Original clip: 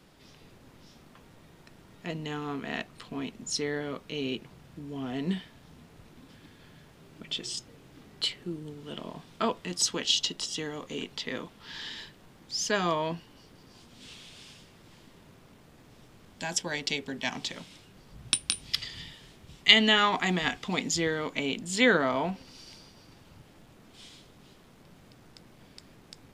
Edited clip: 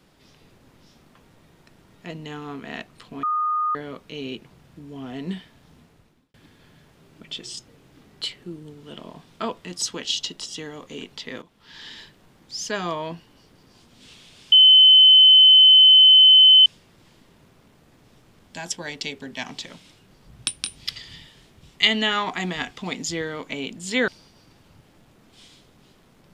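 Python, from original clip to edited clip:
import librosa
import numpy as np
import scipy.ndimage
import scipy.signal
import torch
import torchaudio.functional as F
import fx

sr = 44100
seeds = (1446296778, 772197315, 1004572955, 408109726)

y = fx.edit(x, sr, fx.bleep(start_s=3.23, length_s=0.52, hz=1230.0, db=-20.0),
    fx.fade_out_span(start_s=5.78, length_s=0.56),
    fx.fade_in_from(start_s=11.42, length_s=0.5, floor_db=-12.0),
    fx.insert_tone(at_s=14.52, length_s=2.14, hz=3050.0, db=-8.0),
    fx.cut(start_s=21.94, length_s=0.75), tone=tone)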